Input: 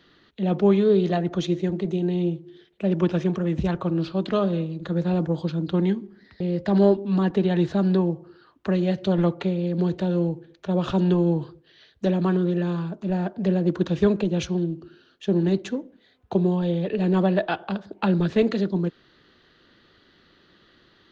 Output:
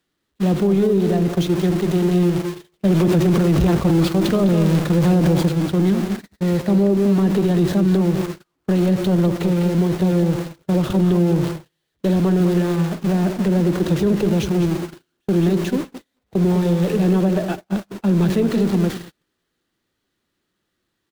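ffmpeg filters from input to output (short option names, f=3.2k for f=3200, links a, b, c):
-filter_complex "[0:a]aeval=exprs='val(0)+0.5*0.0562*sgn(val(0))':c=same,acrossover=split=470[a][b];[b]acompressor=threshold=-33dB:ratio=4[c];[a][c]amix=inputs=2:normalize=0,asplit=2[d][e];[e]adelay=203,lowpass=f=4.2k:p=1,volume=-8dB,asplit=2[f][g];[g]adelay=203,lowpass=f=4.2k:p=1,volume=0.25,asplit=2[h][i];[i]adelay=203,lowpass=f=4.2k:p=1,volume=0.25[j];[d][f][h][j]amix=inputs=4:normalize=0,aeval=exprs='val(0)*gte(abs(val(0)),0.0158)':c=same,agate=range=-46dB:threshold=-25dB:ratio=16:detection=peak,asettb=1/sr,asplit=3[k][l][m];[k]atrim=end=2.854[n];[l]atrim=start=2.85:end=5.49,asetpts=PTS-STARTPTS,afade=t=in:d=0.004:c=qsin,afade=t=out:st=2.636:d=0.004:c=qsin,acontrast=74[o];[m]atrim=start=5.486[p];[n][o]acrossfade=d=0.004:c1=hsin:c2=qsin[q];[q][p]acrossfade=d=0.004:c1=qsin:c2=hsin,alimiter=level_in=12.5dB:limit=-1dB:release=50:level=0:latency=1,volume=-8.5dB"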